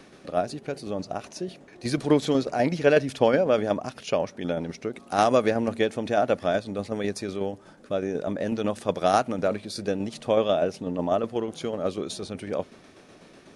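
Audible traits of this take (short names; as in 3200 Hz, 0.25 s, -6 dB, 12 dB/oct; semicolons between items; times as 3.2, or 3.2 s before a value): tremolo saw down 8.1 Hz, depth 45%; AAC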